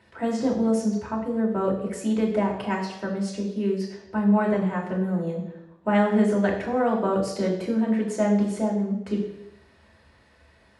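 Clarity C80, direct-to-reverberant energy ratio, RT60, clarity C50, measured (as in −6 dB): 8.5 dB, −3.0 dB, 0.90 s, 6.0 dB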